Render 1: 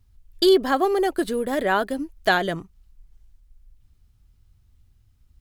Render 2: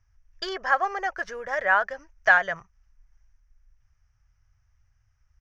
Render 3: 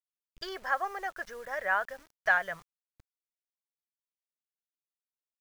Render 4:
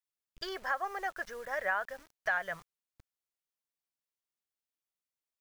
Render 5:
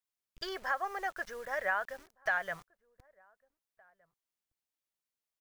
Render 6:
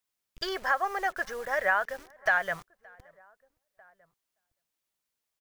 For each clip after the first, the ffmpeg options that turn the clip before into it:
-af "firequalizer=gain_entry='entry(120,0);entry(270,-21);entry(550,4);entry(1700,14);entry(4000,-11);entry(5800,14);entry(8500,-25)':delay=0.05:min_phase=1,volume=0.398"
-af "acrusher=bits=7:mix=0:aa=0.000001,volume=0.422"
-af "alimiter=limit=0.0944:level=0:latency=1:release=239"
-filter_complex "[0:a]asplit=2[s0][s1];[s1]adelay=1516,volume=0.0398,highshelf=f=4000:g=-34.1[s2];[s0][s2]amix=inputs=2:normalize=0"
-filter_complex "[0:a]asplit=2[s0][s1];[s1]adelay=571.4,volume=0.0447,highshelf=f=4000:g=-12.9[s2];[s0][s2]amix=inputs=2:normalize=0,volume=2.11"

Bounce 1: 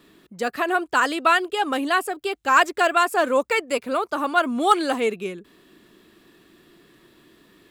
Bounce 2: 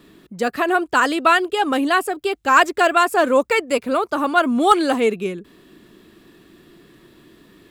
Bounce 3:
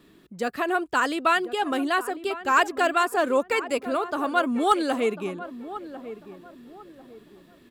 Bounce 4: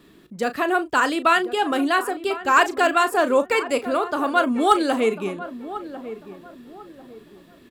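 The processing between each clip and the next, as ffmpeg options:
-af "lowshelf=f=350:g=6,volume=1.33"
-filter_complex "[0:a]asplit=2[s0][s1];[s1]adelay=1046,lowpass=f=1100:p=1,volume=0.237,asplit=2[s2][s3];[s3]adelay=1046,lowpass=f=1100:p=1,volume=0.35,asplit=2[s4][s5];[s5]adelay=1046,lowpass=f=1100:p=1,volume=0.35,asplit=2[s6][s7];[s7]adelay=1046,lowpass=f=1100:p=1,volume=0.35[s8];[s0][s2][s4][s6][s8]amix=inputs=5:normalize=0,volume=0.473"
-filter_complex "[0:a]asplit=2[s0][s1];[s1]adelay=36,volume=0.251[s2];[s0][s2]amix=inputs=2:normalize=0,volume=1.5"

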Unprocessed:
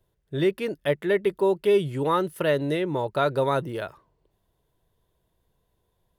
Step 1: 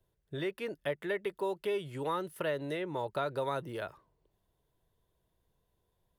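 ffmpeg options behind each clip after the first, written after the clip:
-filter_complex "[0:a]acrossover=split=540|2600[s0][s1][s2];[s0]acompressor=threshold=0.02:ratio=4[s3];[s1]acompressor=threshold=0.0447:ratio=4[s4];[s2]acompressor=threshold=0.00631:ratio=4[s5];[s3][s4][s5]amix=inputs=3:normalize=0,volume=0.531"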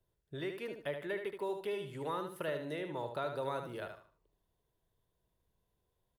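-af "aecho=1:1:75|150|225|300:0.447|0.13|0.0376|0.0109,volume=0.596"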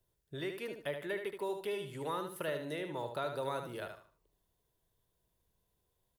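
-af "highshelf=f=4500:g=7"

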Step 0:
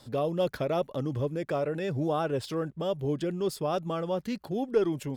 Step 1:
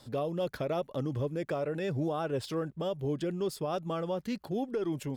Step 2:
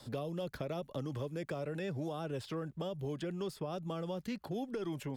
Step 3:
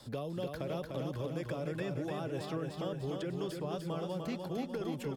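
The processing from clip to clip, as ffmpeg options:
-af "alimiter=limit=0.075:level=0:latency=1:release=167,volume=0.841"
-filter_complex "[0:a]acrossover=split=240|600|2900[s0][s1][s2][s3];[s0]acompressor=threshold=0.00708:ratio=4[s4];[s1]acompressor=threshold=0.00501:ratio=4[s5];[s2]acompressor=threshold=0.00447:ratio=4[s6];[s3]acompressor=threshold=0.00158:ratio=4[s7];[s4][s5][s6][s7]amix=inputs=4:normalize=0,volume=1.19"
-af "aecho=1:1:298|596|894|1192|1490|1788|2086|2384:0.596|0.334|0.187|0.105|0.0586|0.0328|0.0184|0.0103"

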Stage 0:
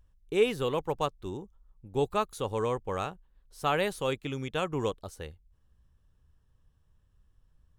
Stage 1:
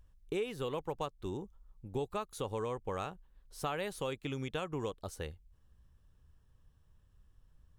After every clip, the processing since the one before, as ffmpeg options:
-af "acompressor=threshold=0.0178:ratio=5,volume=1.12"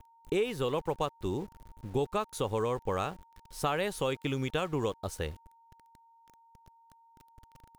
-af "aeval=exprs='val(0)*gte(abs(val(0)),0.00178)':c=same,aeval=exprs='val(0)+0.000562*sin(2*PI*920*n/s)':c=same,volume=2"

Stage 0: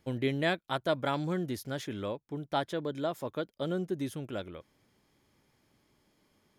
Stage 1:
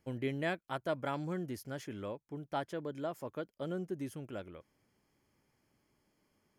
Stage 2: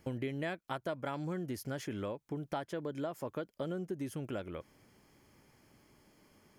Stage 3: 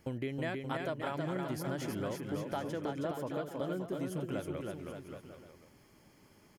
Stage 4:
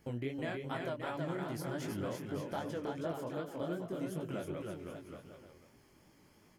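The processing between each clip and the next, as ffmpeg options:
-af "equalizer=f=3700:t=o:w=0.22:g=-13,volume=0.531"
-af "acompressor=threshold=0.00398:ratio=4,volume=3.55"
-af "aecho=1:1:320|576|780.8|944.6|1076:0.631|0.398|0.251|0.158|0.1"
-af "flanger=delay=17.5:depth=7.4:speed=2.6,volume=1.12"

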